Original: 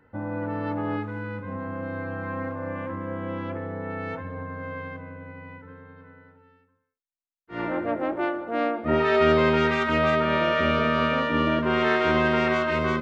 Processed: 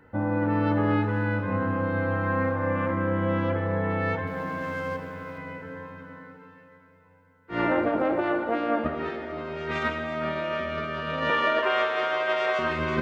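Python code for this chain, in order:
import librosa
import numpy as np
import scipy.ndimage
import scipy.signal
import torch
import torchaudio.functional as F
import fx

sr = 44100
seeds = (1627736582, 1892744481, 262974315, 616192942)

y = fx.law_mismatch(x, sr, coded='A', at=(4.27, 5.38))
y = fx.highpass(y, sr, hz=470.0, slope=24, at=(11.3, 12.59))
y = fx.over_compress(y, sr, threshold_db=-27.0, ratio=-0.5)
y = fx.rev_plate(y, sr, seeds[0], rt60_s=4.5, hf_ratio=0.95, predelay_ms=0, drr_db=6.0)
y = y * librosa.db_to_amplitude(1.5)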